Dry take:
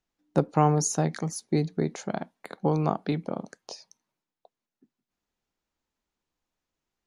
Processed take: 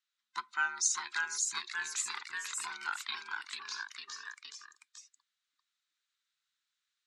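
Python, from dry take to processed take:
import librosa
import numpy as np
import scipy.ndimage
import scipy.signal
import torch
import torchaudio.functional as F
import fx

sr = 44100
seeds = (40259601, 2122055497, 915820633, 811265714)

y = fx.band_invert(x, sr, width_hz=500)
y = scipy.signal.sosfilt(scipy.signal.ellip(3, 1.0, 40, [1300.0, 8300.0], 'bandpass', fs=sr, output='sos'), y)
y = fx.cheby_harmonics(y, sr, harmonics=(7,), levels_db=(-44,), full_scale_db=-15.0)
y = fx.echo_pitch(y, sr, ms=617, semitones=1, count=3, db_per_echo=-3.0)
y = fx.peak_eq(y, sr, hz=3800.0, db=8.5, octaves=0.3)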